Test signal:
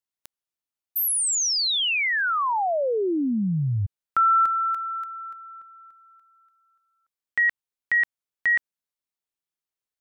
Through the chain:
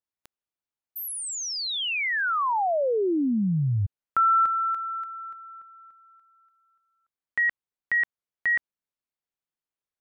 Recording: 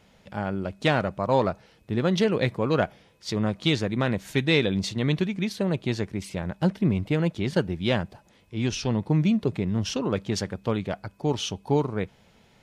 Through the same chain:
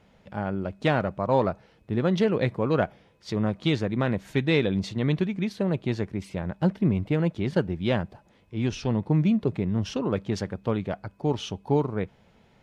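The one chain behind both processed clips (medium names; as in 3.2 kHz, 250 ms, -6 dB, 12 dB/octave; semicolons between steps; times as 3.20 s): treble shelf 3.3 kHz -10.5 dB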